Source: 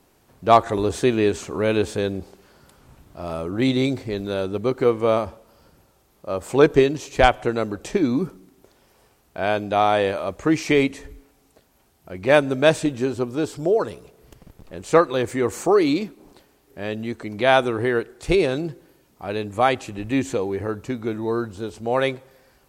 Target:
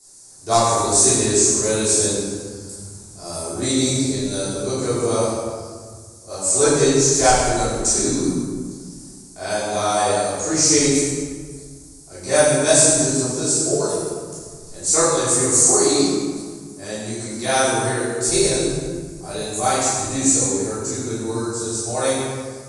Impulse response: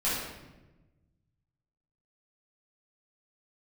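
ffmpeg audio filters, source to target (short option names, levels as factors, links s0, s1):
-filter_complex "[1:a]atrim=start_sample=2205,asetrate=25137,aresample=44100[s0];[0:a][s0]afir=irnorm=-1:irlink=0,aexciter=amount=13.4:drive=9.2:freq=4700,aresample=22050,aresample=44100,volume=0.188"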